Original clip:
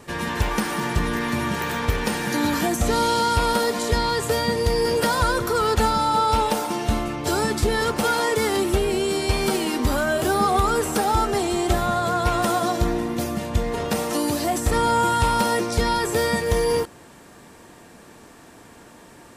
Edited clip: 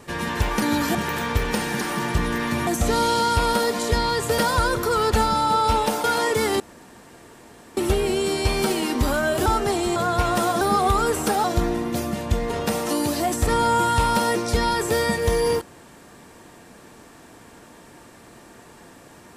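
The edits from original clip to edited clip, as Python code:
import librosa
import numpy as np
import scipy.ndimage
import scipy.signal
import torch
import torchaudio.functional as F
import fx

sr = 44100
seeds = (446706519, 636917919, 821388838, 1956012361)

y = fx.edit(x, sr, fx.swap(start_s=0.62, length_s=0.86, other_s=2.34, other_length_s=0.33),
    fx.cut(start_s=4.38, length_s=0.64),
    fx.cut(start_s=6.68, length_s=1.37),
    fx.insert_room_tone(at_s=8.61, length_s=1.17),
    fx.move(start_s=10.3, length_s=0.83, to_s=12.68),
    fx.cut(start_s=11.63, length_s=0.4), tone=tone)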